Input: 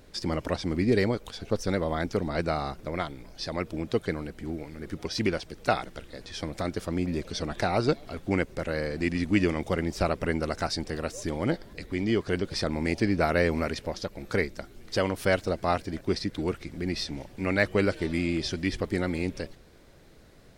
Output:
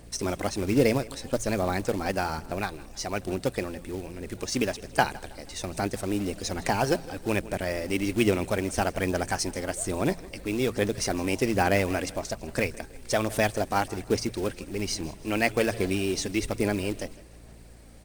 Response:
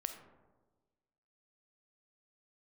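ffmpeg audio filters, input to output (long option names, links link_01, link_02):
-filter_complex "[0:a]equalizer=frequency=7600:width=3.8:gain=14,bandreject=frequency=50:width_type=h:width=6,bandreject=frequency=100:width_type=h:width=6,bandreject=frequency=150:width_type=h:width=6,asplit=2[link_01][link_02];[link_02]aecho=0:1:182|364|546:0.1|0.044|0.0194[link_03];[link_01][link_03]amix=inputs=2:normalize=0,aeval=exprs='val(0)+0.00282*(sin(2*PI*50*n/s)+sin(2*PI*2*50*n/s)/2+sin(2*PI*3*50*n/s)/3+sin(2*PI*4*50*n/s)/4+sin(2*PI*5*50*n/s)/5)':channel_layout=same,acrusher=bits=4:mode=log:mix=0:aa=0.000001,asetrate=50274,aresample=44100,aphaser=in_gain=1:out_gain=1:delay=3.9:decay=0.25:speed=1.2:type=sinusoidal"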